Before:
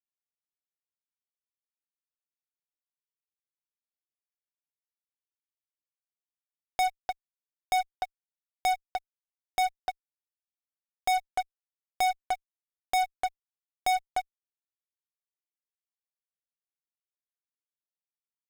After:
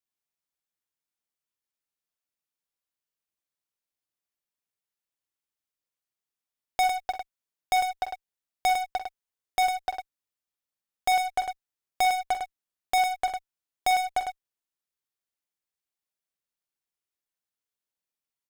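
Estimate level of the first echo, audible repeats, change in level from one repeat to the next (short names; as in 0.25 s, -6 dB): -11.0 dB, 2, no steady repeat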